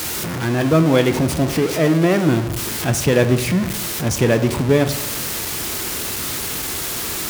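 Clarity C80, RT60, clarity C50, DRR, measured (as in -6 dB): 14.0 dB, 0.95 s, 12.0 dB, 8.5 dB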